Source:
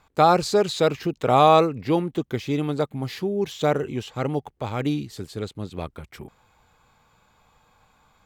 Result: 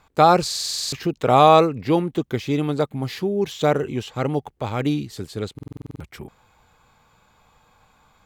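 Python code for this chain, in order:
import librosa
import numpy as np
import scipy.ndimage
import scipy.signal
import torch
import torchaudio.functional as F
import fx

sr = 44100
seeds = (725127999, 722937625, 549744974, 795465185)

y = fx.buffer_glitch(x, sr, at_s=(0.46, 5.54), block=2048, repeats=9)
y = y * 10.0 ** (2.5 / 20.0)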